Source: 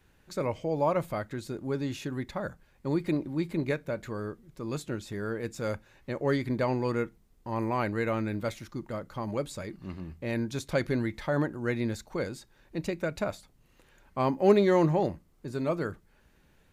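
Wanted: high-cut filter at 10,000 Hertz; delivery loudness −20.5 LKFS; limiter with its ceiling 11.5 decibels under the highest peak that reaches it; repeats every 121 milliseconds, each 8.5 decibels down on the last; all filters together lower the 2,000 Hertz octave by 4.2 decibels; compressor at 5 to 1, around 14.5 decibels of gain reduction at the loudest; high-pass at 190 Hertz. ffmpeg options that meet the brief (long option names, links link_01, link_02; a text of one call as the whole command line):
ffmpeg -i in.wav -af "highpass=190,lowpass=10000,equalizer=frequency=2000:width_type=o:gain=-5.5,acompressor=threshold=-33dB:ratio=5,alimiter=level_in=8.5dB:limit=-24dB:level=0:latency=1,volume=-8.5dB,aecho=1:1:121|242|363|484:0.376|0.143|0.0543|0.0206,volume=22.5dB" out.wav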